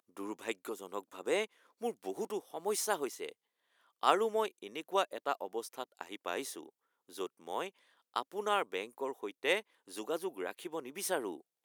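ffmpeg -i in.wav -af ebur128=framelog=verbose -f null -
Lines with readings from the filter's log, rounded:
Integrated loudness:
  I:         -37.2 LUFS
  Threshold: -47.4 LUFS
Loudness range:
  LRA:         4.5 LU
  Threshold: -57.3 LUFS
  LRA low:   -39.7 LUFS
  LRA high:  -35.2 LUFS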